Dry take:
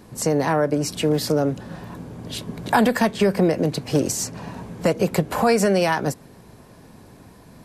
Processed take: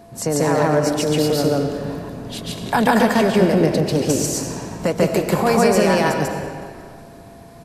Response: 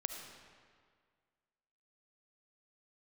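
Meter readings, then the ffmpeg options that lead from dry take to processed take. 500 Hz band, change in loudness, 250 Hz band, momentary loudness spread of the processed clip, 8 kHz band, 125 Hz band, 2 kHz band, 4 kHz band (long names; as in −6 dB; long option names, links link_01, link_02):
+3.5 dB, +3.0 dB, +3.5 dB, 13 LU, +3.0 dB, +3.5 dB, +3.5 dB, +3.5 dB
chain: -filter_complex "[0:a]asplit=6[link_01][link_02][link_03][link_04][link_05][link_06];[link_02]adelay=184,afreqshift=-38,volume=-20dB[link_07];[link_03]adelay=368,afreqshift=-76,volume=-24.3dB[link_08];[link_04]adelay=552,afreqshift=-114,volume=-28.6dB[link_09];[link_05]adelay=736,afreqshift=-152,volume=-32.9dB[link_10];[link_06]adelay=920,afreqshift=-190,volume=-37.2dB[link_11];[link_01][link_07][link_08][link_09][link_10][link_11]amix=inputs=6:normalize=0,asplit=2[link_12][link_13];[1:a]atrim=start_sample=2205,adelay=143[link_14];[link_13][link_14]afir=irnorm=-1:irlink=0,volume=2.5dB[link_15];[link_12][link_15]amix=inputs=2:normalize=0,aeval=exprs='val(0)+0.00708*sin(2*PI*680*n/s)':channel_layout=same,volume=-1dB"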